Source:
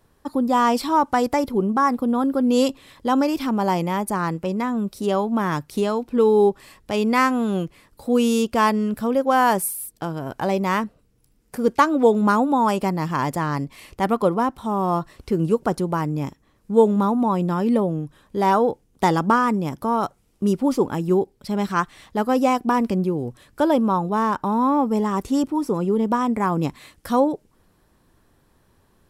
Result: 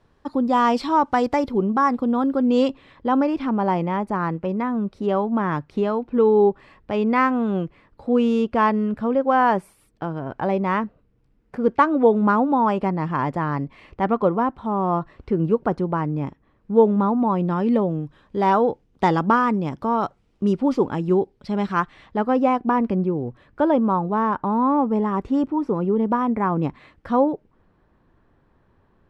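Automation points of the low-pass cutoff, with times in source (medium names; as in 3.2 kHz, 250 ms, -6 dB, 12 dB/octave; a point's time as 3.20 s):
2.15 s 4.4 kHz
3.06 s 2.2 kHz
17.18 s 2.2 kHz
17.74 s 3.7 kHz
21.53 s 3.7 kHz
22.50 s 2.1 kHz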